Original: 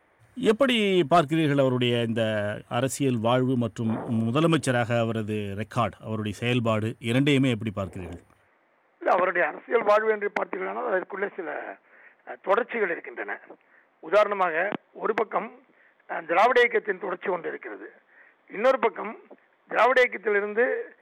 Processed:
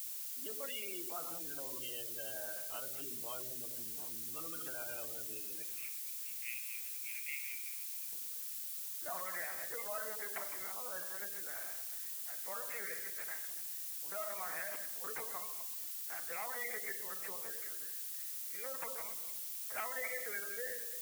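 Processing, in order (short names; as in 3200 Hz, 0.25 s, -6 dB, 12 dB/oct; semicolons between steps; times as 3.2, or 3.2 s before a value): reverse delay 0.127 s, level -9.5 dB; LPC vocoder at 8 kHz pitch kept; 5.63–8.13 Butterworth band-pass 2300 Hz, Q 3.8; reverb RT60 1.1 s, pre-delay 6 ms, DRR 7 dB; spectral gate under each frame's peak -30 dB strong; air absorption 400 m; limiter -15 dBFS, peak gain reduction 9.5 dB; requantised 8-bit, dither triangular; differentiator; gain +1.5 dB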